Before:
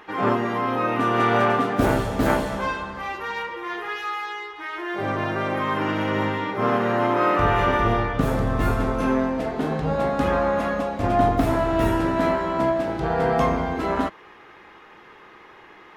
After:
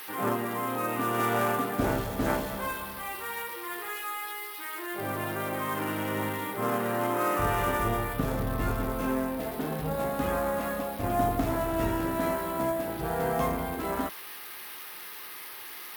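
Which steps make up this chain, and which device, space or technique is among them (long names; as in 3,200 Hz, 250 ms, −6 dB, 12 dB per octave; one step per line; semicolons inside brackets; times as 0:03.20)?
budget class-D amplifier (gap after every zero crossing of 0.068 ms; spike at every zero crossing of −20 dBFS)
level −7.5 dB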